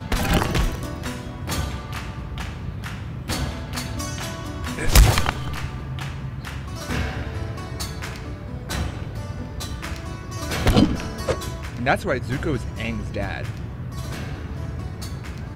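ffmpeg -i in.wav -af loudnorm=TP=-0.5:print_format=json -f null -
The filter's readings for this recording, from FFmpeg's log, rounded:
"input_i" : "-26.7",
"input_tp" : "-2.1",
"input_lra" : "6.9",
"input_thresh" : "-36.7",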